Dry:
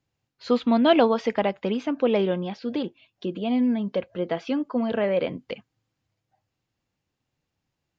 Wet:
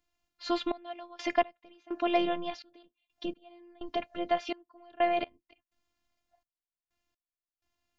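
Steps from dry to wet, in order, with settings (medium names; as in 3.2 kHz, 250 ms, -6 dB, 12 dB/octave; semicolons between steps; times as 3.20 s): robot voice 348 Hz; peaking EQ 370 Hz -12 dB 0.26 oct; trance gate "xxx..x.." 63 bpm -24 dB; trim +2.5 dB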